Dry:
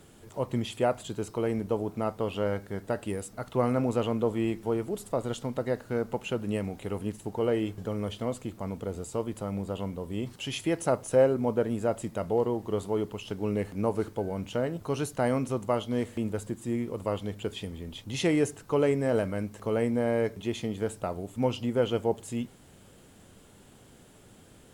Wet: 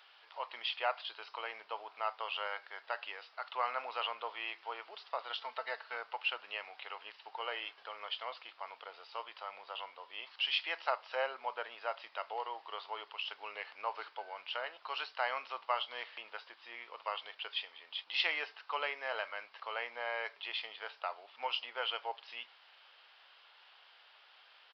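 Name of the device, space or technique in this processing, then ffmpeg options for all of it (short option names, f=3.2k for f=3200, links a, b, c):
musical greeting card: -filter_complex "[0:a]aresample=11025,aresample=44100,highpass=f=870:w=0.5412,highpass=f=870:w=1.3066,equalizer=f=2.8k:t=o:w=0.52:g=4.5,asettb=1/sr,asplit=3[a][b][c];[a]atrim=end=5.374[d];[b]atrim=start=5.37:end=5.95,asetpts=PTS-STARTPTS,afade=t=in:d=0.004:c=qsin,afade=t=out:st=0.576:d=0.004:c=qsin,aecho=1:1:4.5:0.61,atrim=end_sample=25578[e];[c]atrim=start=5.946[f];[d][e]acrossfade=d=0.004:c1=hsin:c2=qsin[g];[g][f]acrossfade=d=0.004:c1=qsin:c2=hsin,volume=1dB"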